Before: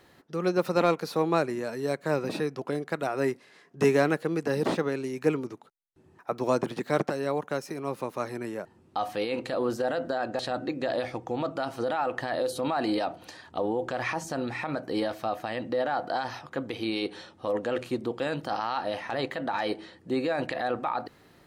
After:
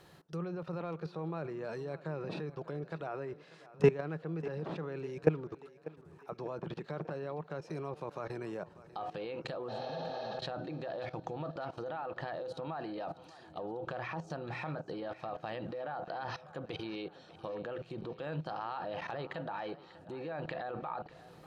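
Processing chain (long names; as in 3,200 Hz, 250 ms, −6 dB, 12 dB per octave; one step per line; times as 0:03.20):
treble cut that deepens with the level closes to 2,800 Hz, closed at −26.5 dBFS
healed spectral selection 0:09.71–0:10.35, 280–6,500 Hz after
output level in coarse steps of 20 dB
thirty-one-band graphic EQ 160 Hz +10 dB, 250 Hz −10 dB, 2,000 Hz −6 dB
feedback echo with a high-pass in the loop 594 ms, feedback 53%, high-pass 180 Hz, level −17 dB
level +1 dB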